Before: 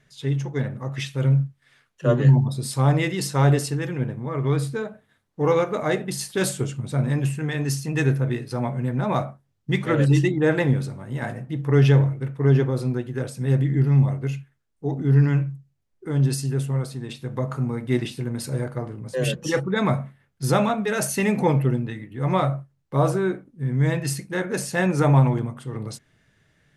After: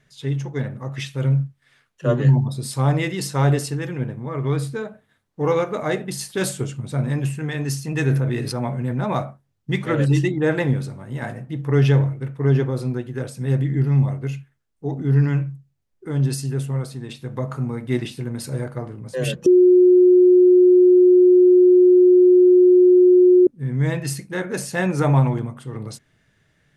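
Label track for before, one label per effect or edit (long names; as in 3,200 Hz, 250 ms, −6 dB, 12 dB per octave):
7.870000	9.180000	level that may fall only so fast at most 31 dB per second
19.460000	23.470000	beep over 362 Hz −8.5 dBFS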